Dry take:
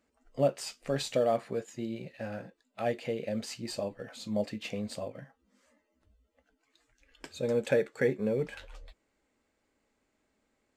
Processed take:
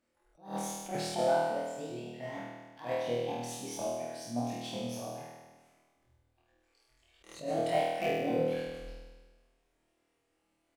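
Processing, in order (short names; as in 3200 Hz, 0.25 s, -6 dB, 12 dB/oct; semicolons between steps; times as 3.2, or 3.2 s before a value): repeated pitch sweeps +6 st, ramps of 0.237 s; in parallel at -10 dB: wrapped overs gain 16 dB; on the sum: doubler 31 ms -11 dB; flutter echo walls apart 4.3 m, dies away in 1.3 s; attack slew limiter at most 160 dB/s; gain -8.5 dB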